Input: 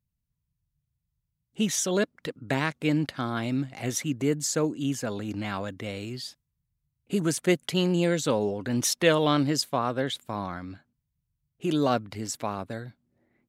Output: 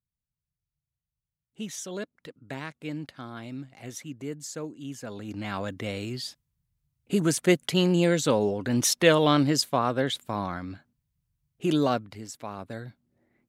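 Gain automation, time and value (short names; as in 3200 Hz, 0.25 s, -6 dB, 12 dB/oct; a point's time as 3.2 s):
4.85 s -10 dB
5.72 s +2 dB
11.74 s +2 dB
12.34 s -8.5 dB
12.87 s 0 dB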